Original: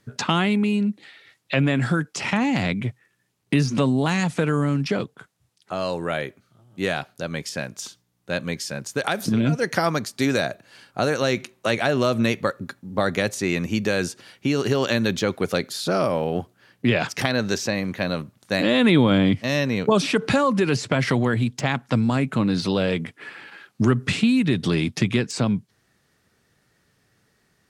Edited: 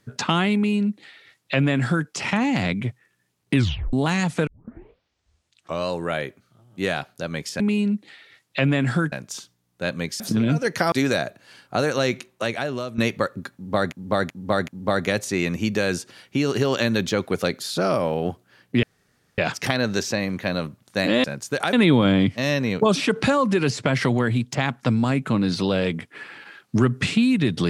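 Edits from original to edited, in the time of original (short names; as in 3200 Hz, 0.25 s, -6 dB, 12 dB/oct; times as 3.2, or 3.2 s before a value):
0.55–2.07 copy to 7.6
3.55 tape stop 0.38 s
4.47 tape start 1.42 s
8.68–9.17 move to 18.79
9.89–10.16 cut
11.37–12.22 fade out, to -13.5 dB
12.78–13.16 loop, 4 plays
16.93 insert room tone 0.55 s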